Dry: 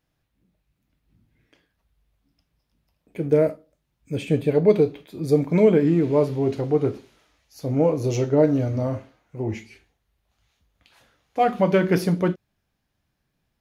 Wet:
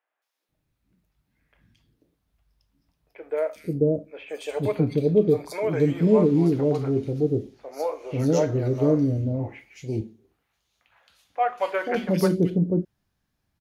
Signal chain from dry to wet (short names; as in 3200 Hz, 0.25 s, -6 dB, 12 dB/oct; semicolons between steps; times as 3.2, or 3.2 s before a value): 9.52–11.46 HPF 210 Hz 6 dB/oct; three bands offset in time mids, highs, lows 0.22/0.49 s, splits 540/2600 Hz